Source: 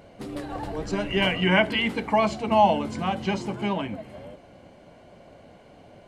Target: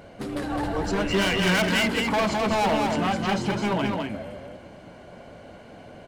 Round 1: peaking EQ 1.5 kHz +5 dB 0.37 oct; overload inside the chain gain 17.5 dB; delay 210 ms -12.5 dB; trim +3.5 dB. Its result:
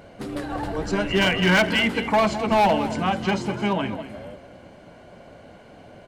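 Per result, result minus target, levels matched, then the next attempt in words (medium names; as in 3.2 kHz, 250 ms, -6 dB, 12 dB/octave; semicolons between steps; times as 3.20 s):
echo-to-direct -9 dB; overload inside the chain: distortion -6 dB
peaking EQ 1.5 kHz +5 dB 0.37 oct; overload inside the chain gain 17.5 dB; delay 210 ms -3.5 dB; trim +3.5 dB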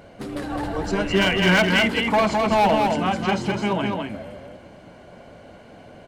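overload inside the chain: distortion -6 dB
peaking EQ 1.5 kHz +5 dB 0.37 oct; overload inside the chain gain 24.5 dB; delay 210 ms -3.5 dB; trim +3.5 dB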